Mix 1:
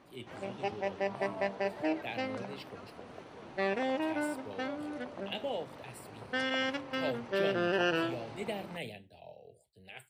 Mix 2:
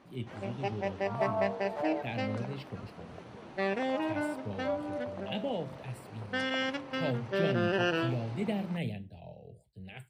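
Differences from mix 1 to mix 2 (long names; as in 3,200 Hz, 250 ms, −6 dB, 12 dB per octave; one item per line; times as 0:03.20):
speech: add bass and treble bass +14 dB, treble −5 dB
second sound +11.0 dB
master: add parametric band 190 Hz +3 dB 0.73 octaves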